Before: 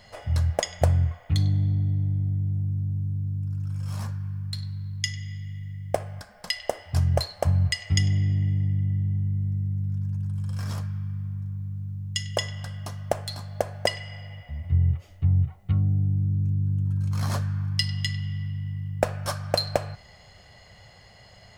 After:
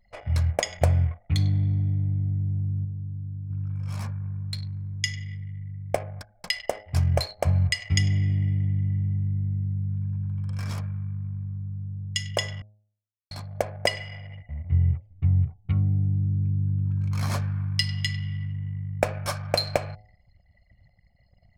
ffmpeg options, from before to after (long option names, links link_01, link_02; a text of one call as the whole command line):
ffmpeg -i in.wav -filter_complex "[0:a]asettb=1/sr,asplit=3[link_01][link_02][link_03];[link_01]atrim=end=4.214[link_04];[link_02]atrim=start=4.21:end=5.43,asetpts=PTS-STARTPTS,afade=type=in:duration=0.004:curve=qsin,afade=type=out:start_time=1.216:duration=0.004:curve=qsin,equalizer=frequency=480:width_type=o:width=0.77:gain=11.5[link_05];[link_03]atrim=start=5.426[link_06];[link_04][link_05]acrossfade=duration=0.004:curve1=hsin:curve2=qsin[link_07];[link_07][link_06]acrossfade=duration=0.004:curve1=qsin:curve2=hsin,asplit=5[link_08][link_09][link_10][link_11][link_12];[link_08]atrim=end=2.852[link_13];[link_09]atrim=start=2.848:end=3.502,asetpts=PTS-STARTPTS,volume=-5dB[link_14];[link_10]atrim=start=3.498:end=12.62,asetpts=PTS-STARTPTS,afade=type=out:start_time=9.118:duration=0.004:curve=hsin[link_15];[link_11]atrim=start=12.62:end=13.31,asetpts=PTS-STARTPTS,volume=0[link_16];[link_12]atrim=start=13.31,asetpts=PTS-STARTPTS,afade=type=in:duration=0.004:curve=hsin[link_17];[link_13][link_14]acrossfade=duration=0.004:curve1=hsin:curve2=hsin[link_18];[link_15][link_16][link_17]concat=n=3:v=0:a=1[link_19];[link_18][link_19]acrossfade=duration=0.004:curve1=hsin:curve2=hsin,anlmdn=0.1,equalizer=frequency=2300:width_type=o:width=0.23:gain=9.5,bandreject=frequency=104.9:width_type=h:width=4,bandreject=frequency=209.8:width_type=h:width=4,bandreject=frequency=314.7:width_type=h:width=4,bandreject=frequency=419.6:width_type=h:width=4,bandreject=frequency=524.5:width_type=h:width=4,bandreject=frequency=629.4:width_type=h:width=4,bandreject=frequency=734.3:width_type=h:width=4,bandreject=frequency=839.2:width_type=h:width=4" out.wav